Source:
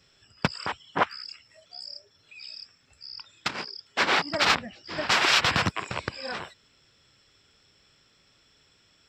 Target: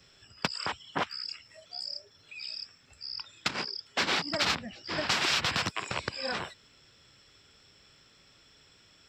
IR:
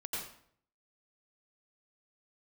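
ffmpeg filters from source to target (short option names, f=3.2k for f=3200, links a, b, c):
-filter_complex "[0:a]acrossover=split=290|3100[a][b][c];[a]acompressor=threshold=-41dB:ratio=4[d];[b]acompressor=threshold=-34dB:ratio=4[e];[c]acompressor=threshold=-32dB:ratio=4[f];[d][e][f]amix=inputs=3:normalize=0,volume=2.5dB"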